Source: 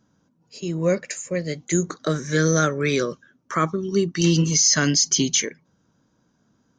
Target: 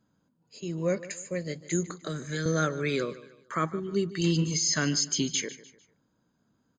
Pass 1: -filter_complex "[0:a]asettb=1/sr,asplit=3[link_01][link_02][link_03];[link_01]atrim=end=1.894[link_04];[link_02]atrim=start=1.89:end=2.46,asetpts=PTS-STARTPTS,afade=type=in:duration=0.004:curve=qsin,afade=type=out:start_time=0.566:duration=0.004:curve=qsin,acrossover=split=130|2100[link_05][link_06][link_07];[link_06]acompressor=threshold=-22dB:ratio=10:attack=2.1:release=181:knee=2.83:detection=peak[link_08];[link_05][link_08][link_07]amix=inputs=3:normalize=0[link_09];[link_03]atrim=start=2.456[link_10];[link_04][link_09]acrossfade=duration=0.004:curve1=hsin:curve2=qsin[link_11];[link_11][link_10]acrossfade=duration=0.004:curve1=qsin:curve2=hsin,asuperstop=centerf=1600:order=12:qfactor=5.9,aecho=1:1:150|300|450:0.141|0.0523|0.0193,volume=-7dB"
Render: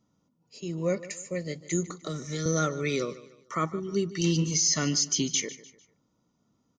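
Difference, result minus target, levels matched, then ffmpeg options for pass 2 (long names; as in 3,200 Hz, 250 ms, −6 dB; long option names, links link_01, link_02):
2,000 Hz band −3.5 dB
-filter_complex "[0:a]asettb=1/sr,asplit=3[link_01][link_02][link_03];[link_01]atrim=end=1.894[link_04];[link_02]atrim=start=1.89:end=2.46,asetpts=PTS-STARTPTS,afade=type=in:duration=0.004:curve=qsin,afade=type=out:start_time=0.566:duration=0.004:curve=qsin,acrossover=split=130|2100[link_05][link_06][link_07];[link_06]acompressor=threshold=-22dB:ratio=10:attack=2.1:release=181:knee=2.83:detection=peak[link_08];[link_05][link_08][link_07]amix=inputs=3:normalize=0[link_09];[link_03]atrim=start=2.456[link_10];[link_04][link_09]acrossfade=duration=0.004:curve1=hsin:curve2=qsin[link_11];[link_11][link_10]acrossfade=duration=0.004:curve1=qsin:curve2=hsin,asuperstop=centerf=5700:order=12:qfactor=5.9,aecho=1:1:150|300|450:0.141|0.0523|0.0193,volume=-7dB"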